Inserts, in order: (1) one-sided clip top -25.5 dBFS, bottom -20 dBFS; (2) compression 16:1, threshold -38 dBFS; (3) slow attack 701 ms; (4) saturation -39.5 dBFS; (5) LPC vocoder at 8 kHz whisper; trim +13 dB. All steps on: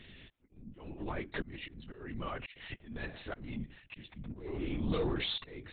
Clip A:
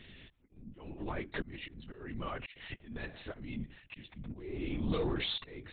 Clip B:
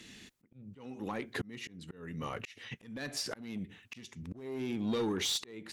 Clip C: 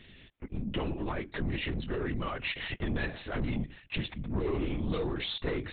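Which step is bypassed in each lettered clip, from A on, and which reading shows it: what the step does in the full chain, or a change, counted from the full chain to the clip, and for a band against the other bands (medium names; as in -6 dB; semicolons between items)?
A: 1, distortion -15 dB; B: 5, 125 Hz band -3.5 dB; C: 3, crest factor change -2.5 dB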